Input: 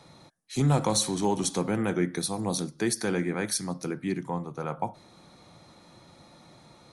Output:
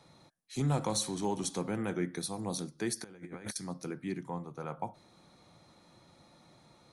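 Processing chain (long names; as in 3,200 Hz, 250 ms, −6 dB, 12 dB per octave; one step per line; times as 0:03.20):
0:03.04–0:03.56: compressor whose output falls as the input rises −36 dBFS, ratio −0.5
level −7 dB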